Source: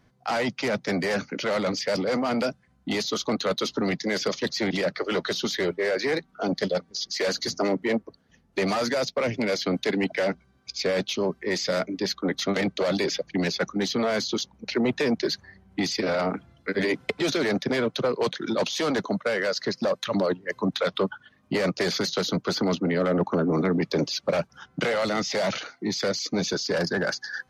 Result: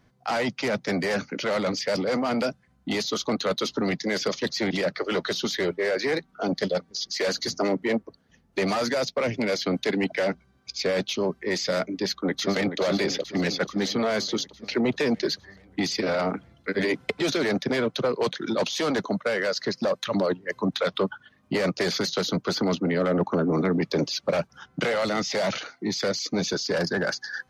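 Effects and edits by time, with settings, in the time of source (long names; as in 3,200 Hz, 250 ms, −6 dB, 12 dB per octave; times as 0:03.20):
0:12.01–0:12.80: delay throw 430 ms, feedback 65%, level −9 dB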